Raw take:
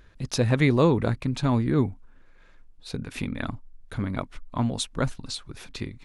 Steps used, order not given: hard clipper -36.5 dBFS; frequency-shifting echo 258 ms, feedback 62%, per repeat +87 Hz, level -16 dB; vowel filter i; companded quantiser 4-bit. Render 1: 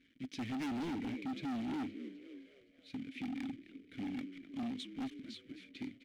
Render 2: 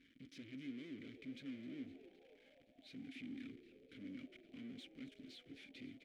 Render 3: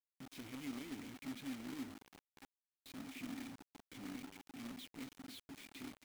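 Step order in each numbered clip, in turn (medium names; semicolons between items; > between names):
companded quantiser > frequency-shifting echo > vowel filter > hard clipper; hard clipper > companded quantiser > vowel filter > frequency-shifting echo; hard clipper > frequency-shifting echo > vowel filter > companded quantiser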